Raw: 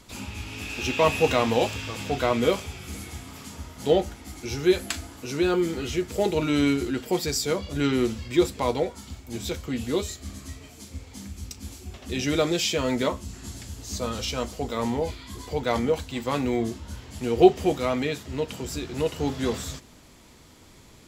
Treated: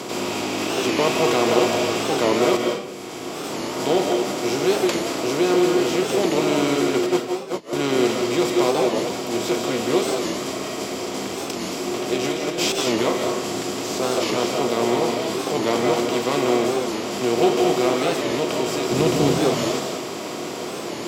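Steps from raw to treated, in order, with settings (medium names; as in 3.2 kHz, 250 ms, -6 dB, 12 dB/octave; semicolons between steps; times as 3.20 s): spectral levelling over time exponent 0.4; 7.06–7.73 s: gate -14 dBFS, range -27 dB; high-pass 120 Hz 24 dB/octave; 2.57–3.74 s: fade in; 12.16–12.88 s: compressor with a negative ratio -20 dBFS, ratio -0.5; 18.91–19.39 s: tone controls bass +12 dB, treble +3 dB; reverberation RT60 0.70 s, pre-delay 125 ms, DRR 2 dB; warped record 45 rpm, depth 160 cents; trim -4.5 dB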